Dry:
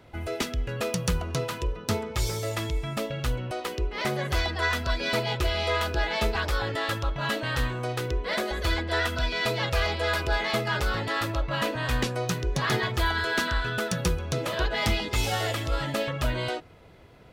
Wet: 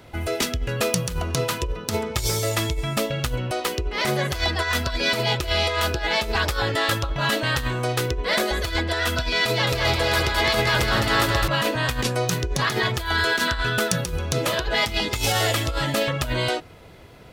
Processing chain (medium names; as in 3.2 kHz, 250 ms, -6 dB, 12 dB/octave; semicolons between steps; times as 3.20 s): compressor with a negative ratio -27 dBFS, ratio -0.5; treble shelf 4.2 kHz +6.5 dB; 9.46–11.48 s: bouncing-ball echo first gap 210 ms, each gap 0.85×, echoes 5; trim +4.5 dB